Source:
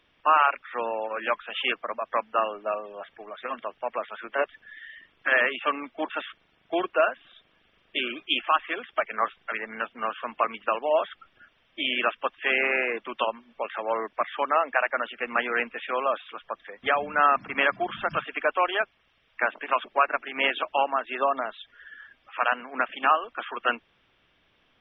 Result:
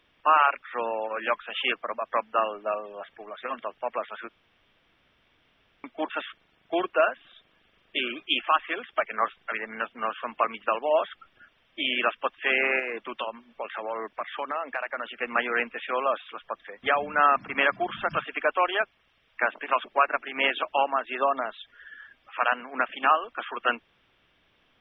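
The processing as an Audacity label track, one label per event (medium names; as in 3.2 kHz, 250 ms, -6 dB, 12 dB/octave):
4.290000	5.840000	room tone
12.790000	15.150000	compression 2.5:1, threshold -29 dBFS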